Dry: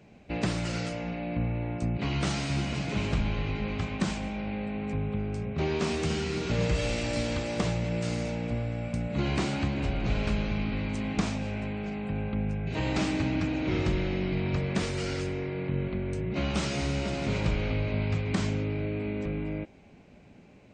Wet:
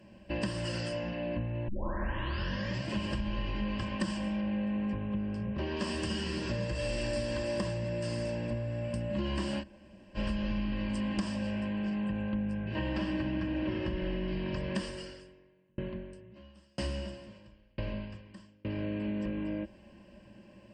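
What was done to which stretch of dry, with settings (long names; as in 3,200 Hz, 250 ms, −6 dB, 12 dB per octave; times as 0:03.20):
0:01.68: tape start 1.23 s
0:04.41–0:05.77: high-frequency loss of the air 110 metres
0:06.41–0:08.84: notch filter 3,000 Hz, Q 13
0:09.61–0:10.17: fill with room tone, crossfade 0.06 s
0:12.64–0:14.28: low-pass filter 3,300 Hz
0:14.78–0:18.65: tremolo with a ramp in dB decaying 1 Hz, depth 40 dB
whole clip: EQ curve with evenly spaced ripples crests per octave 1.3, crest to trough 13 dB; downward compressor, threshold −27 dBFS; comb filter 3.8 ms, depth 33%; level −2.5 dB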